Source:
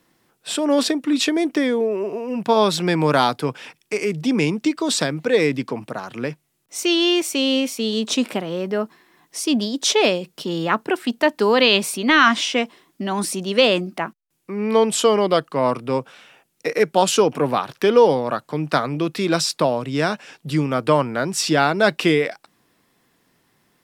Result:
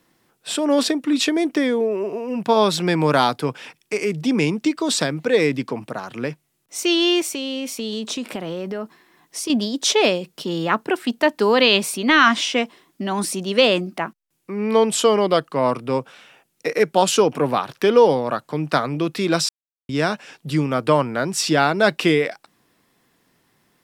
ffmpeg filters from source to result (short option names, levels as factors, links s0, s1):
-filter_complex "[0:a]asettb=1/sr,asplit=3[s0][s1][s2];[s0]atrim=end=7.274[s3];[s1]atrim=start=7.27:end=9.5,asetpts=PTS-STARTPTS,afade=t=in:d=0.004:c=qsin,afade=t=out:st=2.226:d=0.004:c=qsin,acompressor=threshold=0.0708:ratio=6:attack=3.2:release=140:knee=1:detection=peak[s4];[s2]atrim=start=9.496[s5];[s3][s4]acrossfade=d=0.004:c1=hsin:c2=qsin[s6];[s6][s5]acrossfade=d=0.004:c1=qsin:c2=hsin,asplit=3[s7][s8][s9];[s7]atrim=end=19.49,asetpts=PTS-STARTPTS,afade=t=out:st=19.486:d=0.004:c=hsin[s10];[s8]atrim=start=19.49:end=19.89,asetpts=PTS-STARTPTS,volume=0[s11];[s9]atrim=start=19.89,asetpts=PTS-STARTPTS,afade=t=in:d=0.004:c=hsin[s12];[s10][s11][s12]concat=n=3:v=0:a=1"